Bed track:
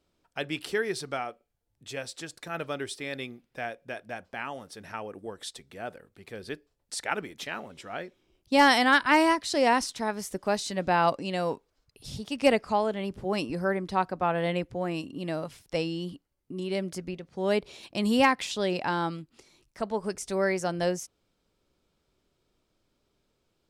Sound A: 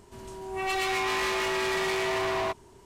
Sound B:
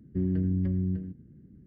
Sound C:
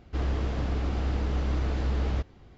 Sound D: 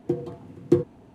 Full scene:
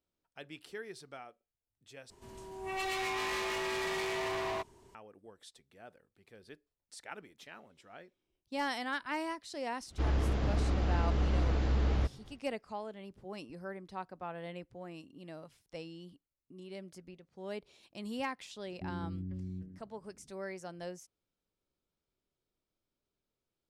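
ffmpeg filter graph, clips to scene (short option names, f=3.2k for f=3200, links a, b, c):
-filter_complex "[0:a]volume=-15.5dB[a];[1:a]equalizer=f=1.4k:w=6.2:g=-3[b];[a]asplit=2[c][d];[c]atrim=end=2.104[e];[b]atrim=end=2.85,asetpts=PTS-STARTPTS,volume=-7dB[f];[d]atrim=start=4.946[g];[3:a]atrim=end=2.57,asetpts=PTS-STARTPTS,volume=-2dB,afade=t=in:d=0.1,afade=t=out:st=2.47:d=0.1,adelay=9850[h];[2:a]atrim=end=1.66,asetpts=PTS-STARTPTS,volume=-13dB,afade=t=in:d=0.004:c=hsin,afade=t=out:st=1.656:d=0.004:c=hsin,adelay=18660[i];[e][f]acrossfade=d=0.004:c1=hsin:c2=hsin[j];[j][g]acrossfade=d=0.004:c1=hsin:c2=hsin[k];[k][h][i]amix=inputs=3:normalize=0"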